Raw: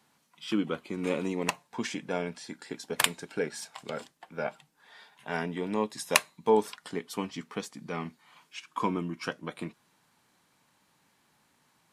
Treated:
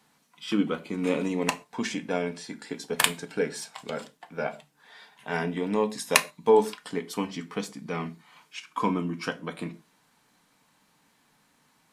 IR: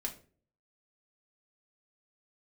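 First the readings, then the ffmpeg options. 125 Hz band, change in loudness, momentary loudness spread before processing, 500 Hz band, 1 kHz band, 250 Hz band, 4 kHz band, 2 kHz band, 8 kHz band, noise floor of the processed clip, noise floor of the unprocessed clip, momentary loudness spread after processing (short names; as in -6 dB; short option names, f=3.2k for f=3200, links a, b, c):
+3.5 dB, +3.5 dB, 15 LU, +4.5 dB, +3.0 dB, +4.0 dB, +2.5 dB, +3.0 dB, +2.5 dB, -66 dBFS, -69 dBFS, 16 LU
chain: -filter_complex "[0:a]asplit=2[a][b];[1:a]atrim=start_sample=2205,afade=t=out:st=0.19:d=0.01,atrim=end_sample=8820[c];[b][c]afir=irnorm=-1:irlink=0,volume=-1.5dB[d];[a][d]amix=inputs=2:normalize=0,volume=-2dB"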